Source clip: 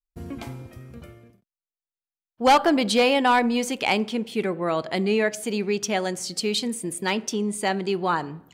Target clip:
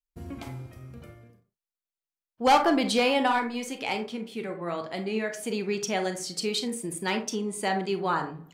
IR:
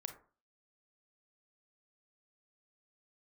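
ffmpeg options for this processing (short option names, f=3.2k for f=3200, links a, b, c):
-filter_complex "[0:a]asplit=3[a][b][c];[a]afade=t=out:st=3.27:d=0.02[d];[b]flanger=delay=6.4:depth=8.1:regen=52:speed=1:shape=triangular,afade=t=in:st=3.27:d=0.02,afade=t=out:st=5.38:d=0.02[e];[c]afade=t=in:st=5.38:d=0.02[f];[d][e][f]amix=inputs=3:normalize=0[g];[1:a]atrim=start_sample=2205,atrim=end_sample=6174[h];[g][h]afir=irnorm=-1:irlink=0"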